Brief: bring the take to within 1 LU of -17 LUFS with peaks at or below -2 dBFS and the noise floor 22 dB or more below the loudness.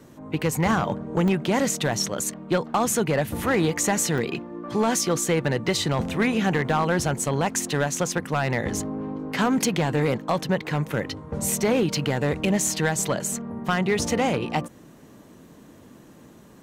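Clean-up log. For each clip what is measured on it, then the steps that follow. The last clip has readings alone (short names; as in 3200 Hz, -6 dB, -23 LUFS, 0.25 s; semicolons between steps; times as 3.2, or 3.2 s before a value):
clipped 1.1%; flat tops at -15.0 dBFS; dropouts 2; longest dropout 1.4 ms; loudness -24.5 LUFS; peak -15.0 dBFS; loudness target -17.0 LUFS
-> clip repair -15 dBFS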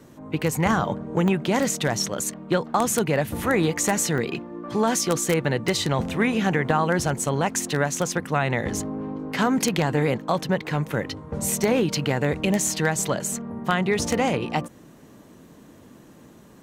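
clipped 0.0%; dropouts 2; longest dropout 1.4 ms
-> interpolate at 1.28/4.18, 1.4 ms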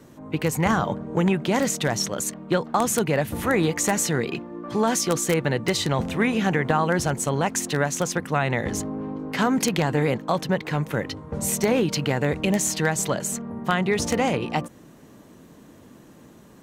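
dropouts 0; loudness -24.0 LUFS; peak -6.0 dBFS; loudness target -17.0 LUFS
-> gain +7 dB; limiter -2 dBFS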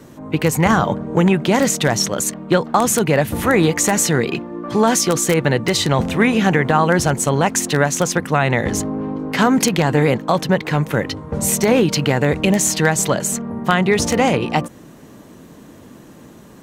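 loudness -17.0 LUFS; peak -2.0 dBFS; noise floor -42 dBFS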